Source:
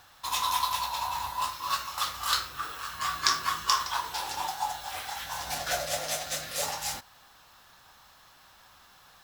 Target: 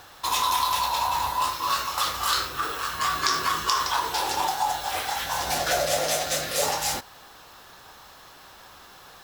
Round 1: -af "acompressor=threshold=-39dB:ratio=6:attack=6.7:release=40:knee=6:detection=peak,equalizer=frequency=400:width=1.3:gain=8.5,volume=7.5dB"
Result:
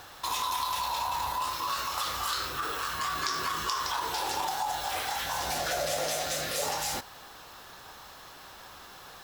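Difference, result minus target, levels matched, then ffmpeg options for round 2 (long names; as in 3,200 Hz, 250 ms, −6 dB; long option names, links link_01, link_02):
downward compressor: peak gain reduction +8 dB
-af "acompressor=threshold=-29.5dB:ratio=6:attack=6.7:release=40:knee=6:detection=peak,equalizer=frequency=400:width=1.3:gain=8.5,volume=7.5dB"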